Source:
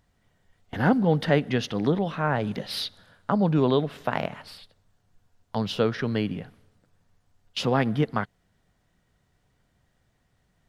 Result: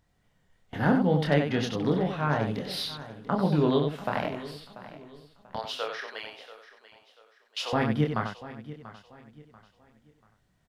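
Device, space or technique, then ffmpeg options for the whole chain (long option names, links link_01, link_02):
slapback doubling: -filter_complex "[0:a]asettb=1/sr,asplit=3[link_01][link_02][link_03];[link_01]atrim=end=5.564[link_04];[link_02]atrim=start=5.56:end=7.73,asetpts=PTS-STARTPTS,afade=type=in:duration=0.004:curve=qsin,afade=type=out:start_time=2.166:duration=0.004:curve=qsin,highpass=frequency=600:width=0.5412,highpass=frequency=600:width=1.3066[link_05];[link_03]atrim=start=7.726[link_06];[link_04][link_05]acrossfade=duration=0.004:curve1=hsin:curve2=qsin[link_07];[link_07][link_06]acrossfade=duration=0.004:curve1=qsin:curve2=hsin,asplit=3[link_08][link_09][link_10];[link_09]adelay=27,volume=-4dB[link_11];[link_10]adelay=93,volume=-6dB[link_12];[link_08][link_11][link_12]amix=inputs=3:normalize=0,aecho=1:1:688|1376|2064:0.158|0.0523|0.0173,volume=-4dB"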